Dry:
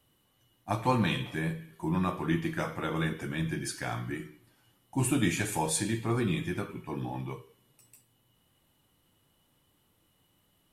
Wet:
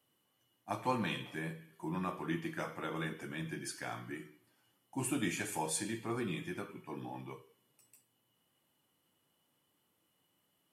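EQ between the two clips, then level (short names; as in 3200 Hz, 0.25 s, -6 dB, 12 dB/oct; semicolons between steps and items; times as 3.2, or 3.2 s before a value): Bessel high-pass 200 Hz, order 2; notch 3800 Hz, Q 13; -6.0 dB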